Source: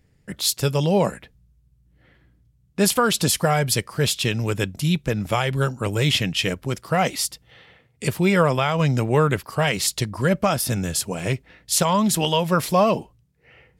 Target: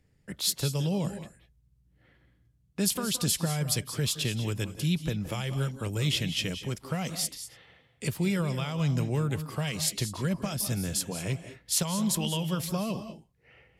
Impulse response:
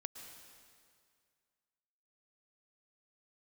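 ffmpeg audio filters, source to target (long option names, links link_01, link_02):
-filter_complex "[0:a]acrossover=split=270|3000[link_01][link_02][link_03];[link_02]acompressor=threshold=-30dB:ratio=6[link_04];[link_01][link_04][link_03]amix=inputs=3:normalize=0[link_05];[1:a]atrim=start_sample=2205,atrim=end_sample=6174,asetrate=28224,aresample=44100[link_06];[link_05][link_06]afir=irnorm=-1:irlink=0,volume=-4dB"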